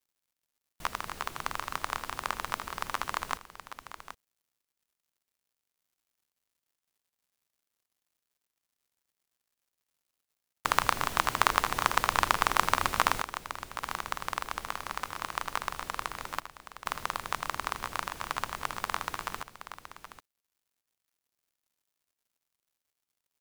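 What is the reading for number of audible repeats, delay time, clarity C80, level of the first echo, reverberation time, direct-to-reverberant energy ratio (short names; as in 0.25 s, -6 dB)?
2, 80 ms, none, -19.0 dB, none, none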